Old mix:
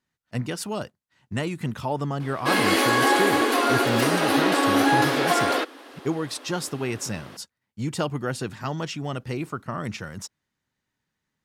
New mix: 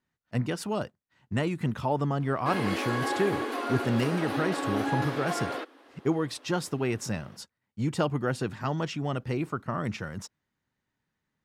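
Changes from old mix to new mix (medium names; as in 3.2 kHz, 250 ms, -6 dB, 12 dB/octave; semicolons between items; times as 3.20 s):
background -10.0 dB; master: add treble shelf 3.4 kHz -8 dB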